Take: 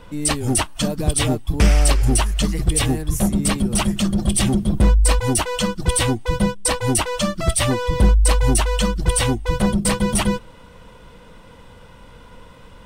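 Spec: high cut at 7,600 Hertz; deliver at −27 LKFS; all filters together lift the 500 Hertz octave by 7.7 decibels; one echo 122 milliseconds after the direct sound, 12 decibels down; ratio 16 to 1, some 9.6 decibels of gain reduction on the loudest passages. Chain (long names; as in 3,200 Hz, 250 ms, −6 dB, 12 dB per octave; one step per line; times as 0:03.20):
low-pass filter 7,600 Hz
parametric band 500 Hz +8.5 dB
downward compressor 16 to 1, threshold −18 dBFS
single-tap delay 122 ms −12 dB
level −3.5 dB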